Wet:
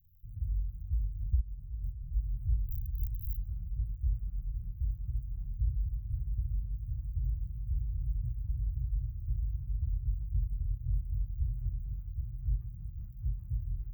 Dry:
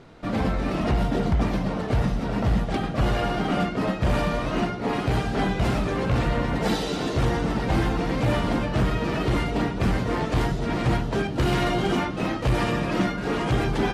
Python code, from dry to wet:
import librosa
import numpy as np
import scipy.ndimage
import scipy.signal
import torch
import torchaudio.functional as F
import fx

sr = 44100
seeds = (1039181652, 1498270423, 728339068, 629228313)

y = fx.wiener(x, sr, points=25)
y = fx.air_absorb(y, sr, metres=94.0)
y = fx.echo_feedback(y, sr, ms=777, feedback_pct=46, wet_db=-3.5)
y = fx.rotary_switch(y, sr, hz=1.1, then_hz=5.0, switch_at_s=6.8)
y = fx.dmg_crackle(y, sr, seeds[0], per_s=340.0, level_db=-44.0)
y = fx.over_compress(y, sr, threshold_db=-28.0, ratio=-0.5, at=(1.4, 2.16))
y = fx.low_shelf(y, sr, hz=120.0, db=-4.5)
y = fx.overflow_wrap(y, sr, gain_db=20.0, at=(2.68, 3.37))
y = scipy.signal.sosfilt(scipy.signal.cheby2(4, 50, [230.0, 8400.0], 'bandstop', fs=sr, output='sos'), y)